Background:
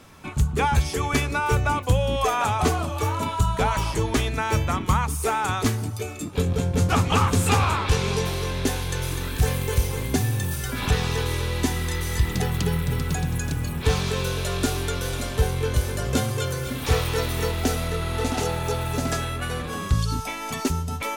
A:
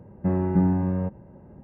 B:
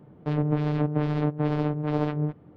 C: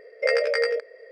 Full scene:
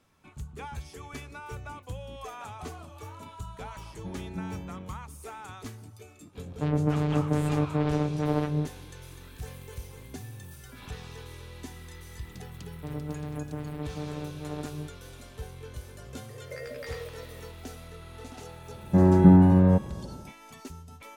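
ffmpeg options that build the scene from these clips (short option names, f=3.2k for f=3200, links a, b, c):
-filter_complex "[1:a]asplit=2[a][b];[2:a]asplit=2[c][d];[0:a]volume=-18.5dB[e];[3:a]acompressor=threshold=-34dB:ratio=6:attack=3.2:release=140:knee=1:detection=peak[f];[b]dynaudnorm=f=110:g=5:m=11dB[g];[a]atrim=end=1.63,asetpts=PTS-STARTPTS,volume=-16dB,afade=t=in:d=0.004:c=hsin,afade=t=out:st=1.626:d=0.004:c=hsin,adelay=3800[h];[c]atrim=end=2.56,asetpts=PTS-STARTPTS,volume=-1dB,afade=t=in:d=0.004:c=hsin,afade=t=out:st=2.556:d=0.004:c=hsin,adelay=6350[i];[d]atrim=end=2.56,asetpts=PTS-STARTPTS,volume=-11dB,afade=t=in:d=0.004:c=hsin,afade=t=out:st=2.556:d=0.004:c=hsin,adelay=12570[j];[f]atrim=end=1.11,asetpts=PTS-STARTPTS,volume=-3.5dB,afade=t=in:d=0.004:c=hsin,afade=t=out:st=1.106:d=0.004:c=hsin,adelay=16290[k];[g]atrim=end=1.63,asetpts=PTS-STARTPTS,volume=-3dB,afade=t=in:d=0.004:c=hsin,afade=t=out:st=1.626:d=0.004:c=hsin,adelay=18690[l];[e][h][i][j][k][l]amix=inputs=6:normalize=0"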